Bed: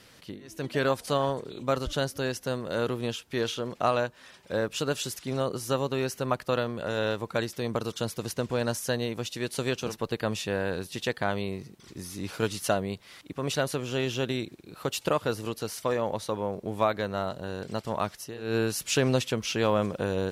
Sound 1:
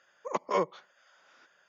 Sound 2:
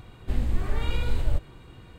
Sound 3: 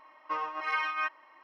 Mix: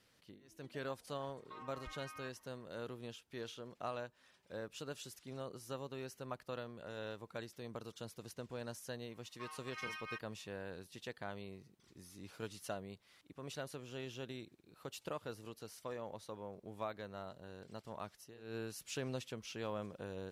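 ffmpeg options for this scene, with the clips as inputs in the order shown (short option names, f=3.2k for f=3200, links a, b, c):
-filter_complex "[3:a]asplit=2[a][b];[0:a]volume=-17dB[c];[a]acompressor=threshold=-34dB:ratio=6:attack=3.2:release=140:knee=1:detection=peak[d];[b]aderivative[e];[d]atrim=end=1.43,asetpts=PTS-STARTPTS,volume=-14.5dB,afade=t=in:d=0.004:c=hsin,afade=t=out:st=1.426:d=0.004:c=hsin,adelay=1210[f];[e]atrim=end=1.43,asetpts=PTS-STARTPTS,volume=-2.5dB,afade=t=in:d=0.004:c=hsin,afade=t=out:st=1.426:d=0.004:c=hsin,adelay=9100[g];[c][f][g]amix=inputs=3:normalize=0"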